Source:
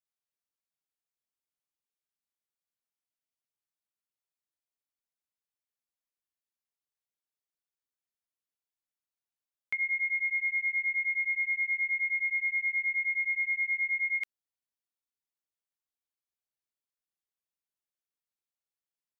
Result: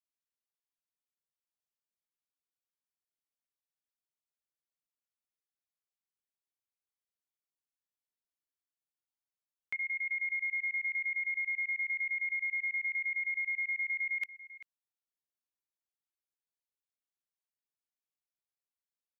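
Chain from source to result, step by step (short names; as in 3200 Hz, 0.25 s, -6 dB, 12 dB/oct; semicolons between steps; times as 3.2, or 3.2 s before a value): level quantiser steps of 17 dB; outdoor echo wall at 67 m, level -13 dB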